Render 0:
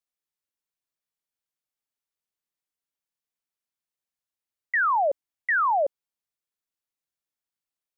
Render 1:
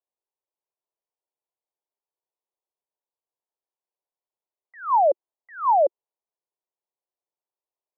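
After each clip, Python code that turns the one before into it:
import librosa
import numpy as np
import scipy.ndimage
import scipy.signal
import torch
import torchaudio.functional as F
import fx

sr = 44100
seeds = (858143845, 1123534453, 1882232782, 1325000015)

y = scipy.signal.sosfilt(scipy.signal.cheby1(3, 1.0, [360.0, 1000.0], 'bandpass', fs=sr, output='sos'), x)
y = y * librosa.db_to_amplitude(5.5)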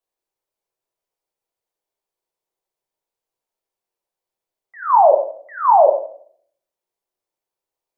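y = fx.room_shoebox(x, sr, seeds[0], volume_m3=77.0, walls='mixed', distance_m=0.64)
y = y * librosa.db_to_amplitude(5.0)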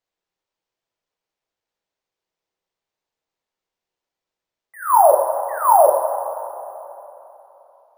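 y = np.repeat(x[::4], 4)[:len(x)]
y = fx.rev_plate(y, sr, seeds[1], rt60_s=3.4, hf_ratio=0.75, predelay_ms=0, drr_db=7.0)
y = y * librosa.db_to_amplitude(-1.0)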